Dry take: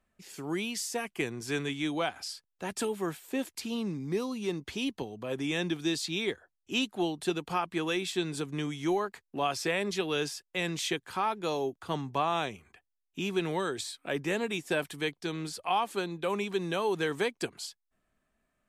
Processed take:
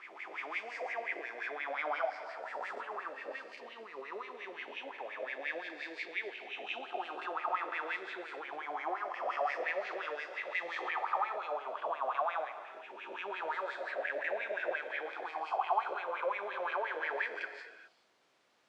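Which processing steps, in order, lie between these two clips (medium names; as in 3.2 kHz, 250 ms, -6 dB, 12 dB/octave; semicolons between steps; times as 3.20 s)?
reverse spectral sustain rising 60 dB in 2.08 s; waveshaping leveller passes 1; wah-wah 5.7 Hz 560–2200 Hz, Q 7.6; added noise pink -68 dBFS; band-pass 360–5000 Hz; gated-style reverb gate 450 ms flat, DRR 9.5 dB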